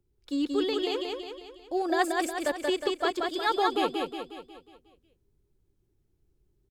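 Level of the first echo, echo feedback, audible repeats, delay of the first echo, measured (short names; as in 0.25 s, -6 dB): -3.0 dB, 50%, 6, 0.181 s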